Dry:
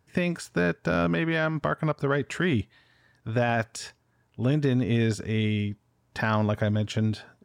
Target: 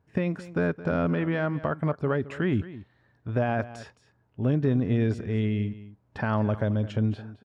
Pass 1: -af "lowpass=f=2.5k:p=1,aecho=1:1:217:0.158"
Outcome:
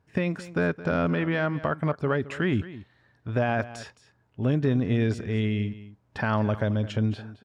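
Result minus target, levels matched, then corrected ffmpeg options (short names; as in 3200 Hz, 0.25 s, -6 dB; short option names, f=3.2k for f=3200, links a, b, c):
2000 Hz band +3.0 dB
-af "lowpass=f=1.1k:p=1,aecho=1:1:217:0.158"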